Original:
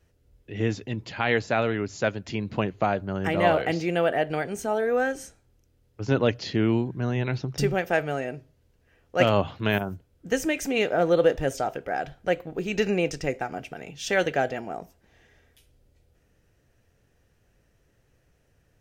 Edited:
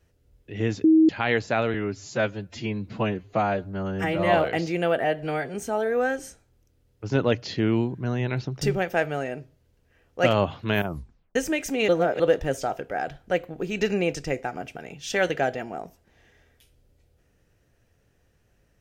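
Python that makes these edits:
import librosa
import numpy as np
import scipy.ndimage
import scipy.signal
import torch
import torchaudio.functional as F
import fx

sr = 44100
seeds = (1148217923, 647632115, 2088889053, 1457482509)

y = fx.edit(x, sr, fx.bleep(start_s=0.84, length_s=0.25, hz=318.0, db=-12.5),
    fx.stretch_span(start_s=1.74, length_s=1.73, factor=1.5),
    fx.stretch_span(start_s=4.17, length_s=0.34, factor=1.5),
    fx.tape_stop(start_s=9.82, length_s=0.5),
    fx.reverse_span(start_s=10.85, length_s=0.31), tone=tone)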